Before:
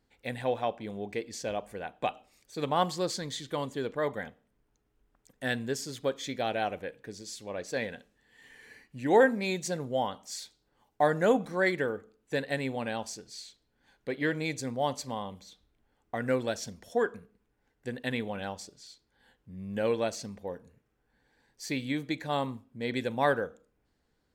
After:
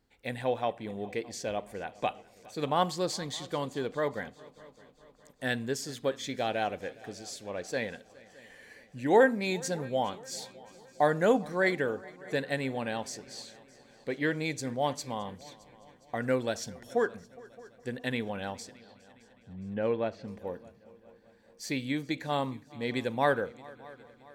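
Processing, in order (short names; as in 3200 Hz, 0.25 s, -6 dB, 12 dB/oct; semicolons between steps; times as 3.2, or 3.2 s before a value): 18.77–20.28 air absorption 380 m; on a send: multi-head echo 0.206 s, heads second and third, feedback 52%, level -23 dB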